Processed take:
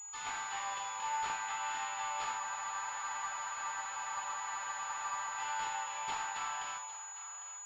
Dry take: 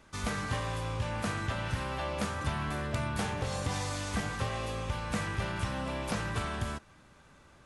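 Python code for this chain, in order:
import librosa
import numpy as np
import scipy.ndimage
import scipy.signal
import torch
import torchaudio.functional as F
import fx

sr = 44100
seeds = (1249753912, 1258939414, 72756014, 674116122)

p1 = np.diff(x, prepend=0.0)
p2 = fx.rider(p1, sr, range_db=10, speed_s=0.5)
p3 = p1 + (p2 * 10.0 ** (2.0 / 20.0))
p4 = fx.ladder_highpass(p3, sr, hz=810.0, resonance_pct=75)
p5 = 10.0 ** (-34.0 / 20.0) * np.tanh(p4 / 10.0 ** (-34.0 / 20.0))
p6 = p5 + fx.echo_single(p5, sr, ms=803, db=-13.5, dry=0)
p7 = fx.room_shoebox(p6, sr, seeds[0], volume_m3=1900.0, walls='furnished', distance_m=4.1)
p8 = fx.spec_freeze(p7, sr, seeds[1], at_s=2.42, hold_s=2.96)
p9 = fx.pwm(p8, sr, carrier_hz=6900.0)
y = p9 * 10.0 ** (8.5 / 20.0)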